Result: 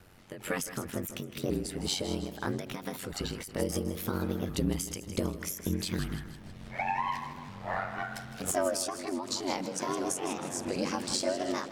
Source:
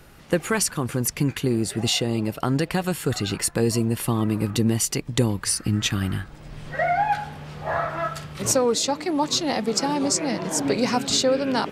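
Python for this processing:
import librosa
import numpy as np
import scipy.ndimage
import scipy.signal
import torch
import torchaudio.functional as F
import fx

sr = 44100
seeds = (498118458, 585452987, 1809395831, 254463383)

p1 = fx.pitch_ramps(x, sr, semitones=5.0, every_ms=1497)
p2 = p1 * np.sin(2.0 * np.pi * 46.0 * np.arange(len(p1)) / sr)
p3 = p2 + fx.echo_feedback(p2, sr, ms=159, feedback_pct=52, wet_db=-13.0, dry=0)
p4 = fx.end_taper(p3, sr, db_per_s=100.0)
y = F.gain(torch.from_numpy(p4), -4.5).numpy()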